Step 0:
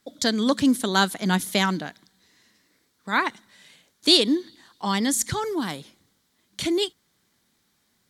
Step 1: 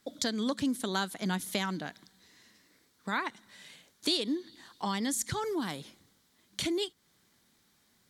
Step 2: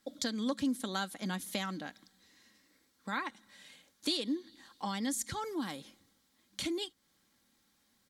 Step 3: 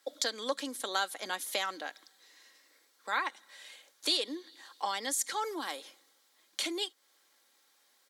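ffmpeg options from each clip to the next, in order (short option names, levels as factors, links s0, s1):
-af "acompressor=threshold=0.0224:ratio=2.5"
-af "aecho=1:1:3.7:0.41,volume=0.596"
-af "highpass=f=410:w=0.5412,highpass=f=410:w=1.3066,volume=1.78"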